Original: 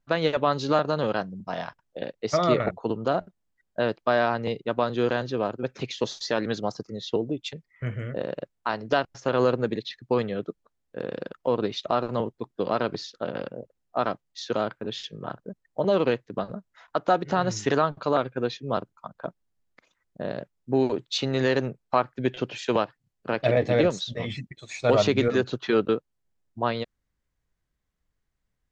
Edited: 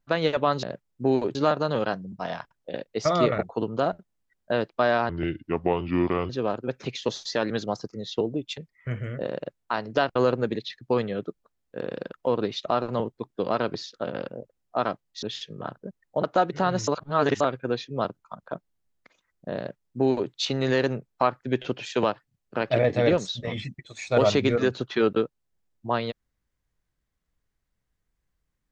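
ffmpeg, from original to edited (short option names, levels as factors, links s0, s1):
-filter_complex "[0:a]asplit=10[s0][s1][s2][s3][s4][s5][s6][s7][s8][s9];[s0]atrim=end=0.632[s10];[s1]atrim=start=20.308:end=21.032[s11];[s2]atrim=start=0.628:end=4.374[s12];[s3]atrim=start=4.37:end=5.25,asetpts=PTS-STARTPTS,asetrate=32193,aresample=44100[s13];[s4]atrim=start=5.246:end=9.112[s14];[s5]atrim=start=9.358:end=14.432[s15];[s6]atrim=start=14.848:end=15.862[s16];[s7]atrim=start=16.958:end=17.602[s17];[s8]atrim=start=17.598:end=18.132,asetpts=PTS-STARTPTS,areverse[s18];[s9]atrim=start=18.128[s19];[s10][s11]acrossfade=d=0.004:c1=hsin:c2=hsin[s20];[s20][s12]acrossfade=d=0.004:c1=hsin:c2=hsin[s21];[s21][s13]acrossfade=d=0.004:c1=hsin:c2=hsin[s22];[s22][s14]acrossfade=d=0.004:c1=hsin:c2=hsin[s23];[s23][s15]acrossfade=d=0.004:c1=hsin:c2=hsin[s24];[s24][s16]acrossfade=d=0.004:c1=hsin:c2=hsin[s25];[s25][s17]acrossfade=d=0.004:c1=hsin:c2=hsin[s26];[s26][s18]acrossfade=d=0.004:c1=hsin:c2=hsin[s27];[s27][s19]acrossfade=d=0.004:c1=hsin:c2=hsin"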